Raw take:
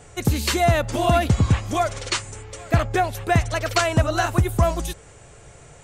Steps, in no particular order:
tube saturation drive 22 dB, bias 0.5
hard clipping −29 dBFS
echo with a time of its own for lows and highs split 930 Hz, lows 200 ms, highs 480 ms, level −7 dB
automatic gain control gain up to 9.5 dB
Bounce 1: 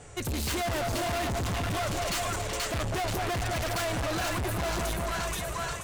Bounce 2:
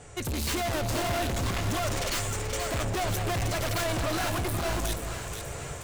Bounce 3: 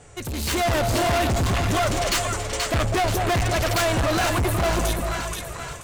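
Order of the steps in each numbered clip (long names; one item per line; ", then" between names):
echo with a time of its own for lows and highs, then automatic gain control, then tube saturation, then hard clipping
tube saturation, then automatic gain control, then hard clipping, then echo with a time of its own for lows and highs
tube saturation, then echo with a time of its own for lows and highs, then hard clipping, then automatic gain control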